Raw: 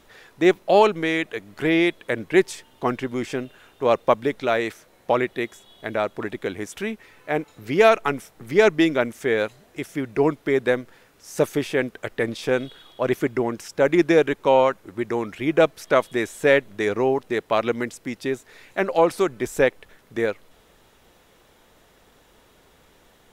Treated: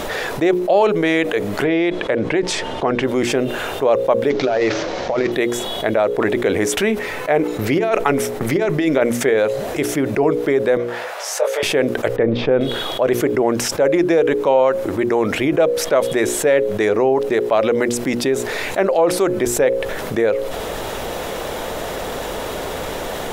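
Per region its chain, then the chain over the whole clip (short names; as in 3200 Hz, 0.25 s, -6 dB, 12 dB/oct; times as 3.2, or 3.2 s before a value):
1.64–3.03 air absorption 89 m + compressor 2:1, threshold -25 dBFS
4.3–5.32 CVSD 32 kbps + negative-ratio compressor -26 dBFS, ratio -0.5 + de-hum 80.75 Hz, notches 17
6.08–9.3 gate -45 dBFS, range -9 dB + bell 2000 Hz +2.5 dB 0.44 oct + negative-ratio compressor -20 dBFS, ratio -0.5
10.77–11.63 steep high-pass 530 Hz + high shelf 4900 Hz -11.5 dB + detuned doubles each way 48 cents
12.16–12.61 Bessel low-pass 2600 Hz, order 4 + tilt -2 dB/oct
whole clip: bell 570 Hz +8 dB 1.3 oct; notches 60/120/180/240/300/360/420/480/540 Hz; fast leveller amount 70%; gain -6 dB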